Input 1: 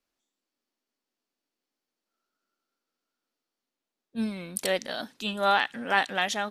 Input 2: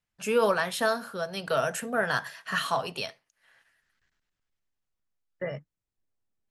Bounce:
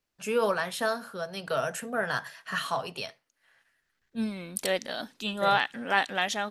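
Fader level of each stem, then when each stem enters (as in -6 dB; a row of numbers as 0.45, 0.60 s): -1.0, -2.5 dB; 0.00, 0.00 s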